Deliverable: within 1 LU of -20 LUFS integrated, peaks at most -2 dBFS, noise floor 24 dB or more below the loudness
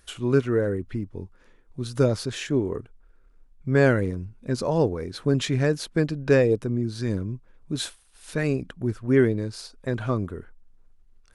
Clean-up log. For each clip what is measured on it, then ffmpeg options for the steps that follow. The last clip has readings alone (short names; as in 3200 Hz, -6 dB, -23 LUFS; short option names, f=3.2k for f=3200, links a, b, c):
loudness -25.5 LUFS; peak -5.5 dBFS; loudness target -20.0 LUFS
-> -af "volume=5.5dB,alimiter=limit=-2dB:level=0:latency=1"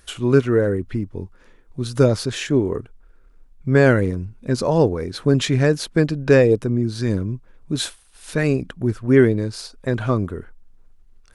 loudness -20.0 LUFS; peak -2.0 dBFS; noise floor -51 dBFS